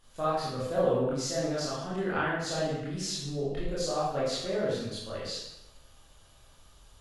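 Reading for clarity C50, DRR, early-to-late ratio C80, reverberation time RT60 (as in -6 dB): -0.5 dB, -8.5 dB, 3.0 dB, 0.90 s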